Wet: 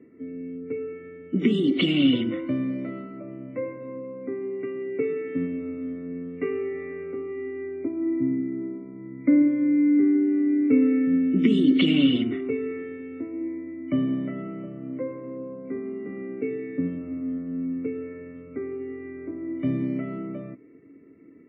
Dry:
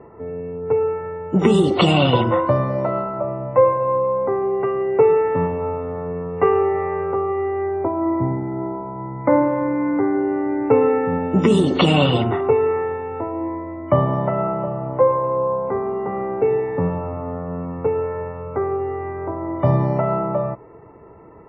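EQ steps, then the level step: vowel filter i; +6.5 dB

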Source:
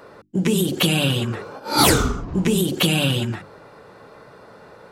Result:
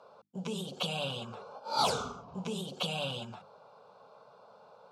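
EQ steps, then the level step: BPF 240–4700 Hz; fixed phaser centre 780 Hz, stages 4; -8.0 dB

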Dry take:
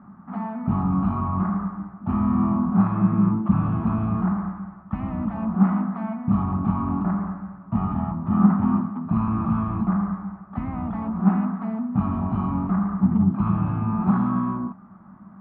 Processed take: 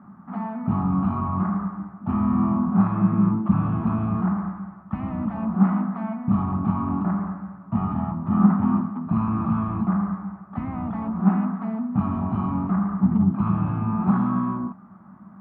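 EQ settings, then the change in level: HPF 73 Hz; 0.0 dB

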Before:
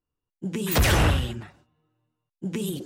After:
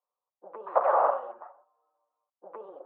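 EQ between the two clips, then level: Chebyshev band-pass 540–1200 Hz, order 3; +6.5 dB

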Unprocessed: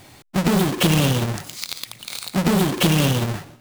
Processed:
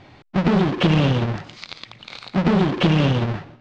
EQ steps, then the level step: Gaussian blur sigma 2.2 samples; +1.0 dB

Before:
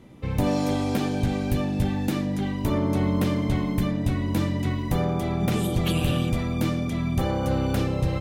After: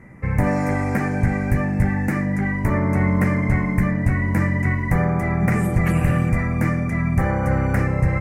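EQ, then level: EQ curve 190 Hz 0 dB, 280 Hz -7 dB, 1300 Hz +1 dB, 2000 Hz +10 dB, 3400 Hz -29 dB, 5100 Hz -13 dB, 8200 Hz -6 dB, 15000 Hz -11 dB; +6.0 dB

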